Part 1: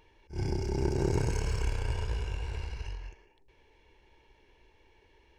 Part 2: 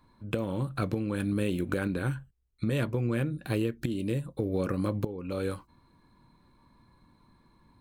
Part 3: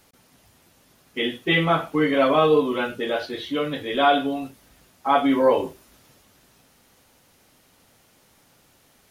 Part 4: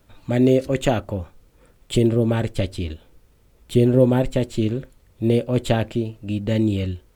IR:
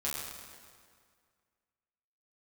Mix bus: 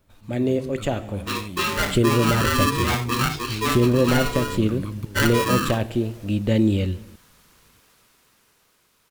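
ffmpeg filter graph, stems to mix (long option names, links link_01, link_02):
-filter_complex "[0:a]adelay=2200,volume=-12.5dB[link_01];[1:a]equalizer=frequency=650:width=0.94:gain=-13,aecho=1:1:0.9:0.65,volume=-9.5dB[link_02];[2:a]highpass=250,acompressor=threshold=-20dB:ratio=4,aeval=exprs='val(0)*sgn(sin(2*PI*720*n/s))':channel_layout=same,adelay=100,volume=-5dB[link_03];[3:a]volume=-7.5dB,asplit=2[link_04][link_05];[link_05]volume=-13dB[link_06];[link_02][link_03][link_04]amix=inputs=3:normalize=0,dynaudnorm=framelen=270:gausssize=13:maxgain=10dB,alimiter=limit=-9dB:level=0:latency=1:release=381,volume=0dB[link_07];[4:a]atrim=start_sample=2205[link_08];[link_06][link_08]afir=irnorm=-1:irlink=0[link_09];[link_01][link_07][link_09]amix=inputs=3:normalize=0"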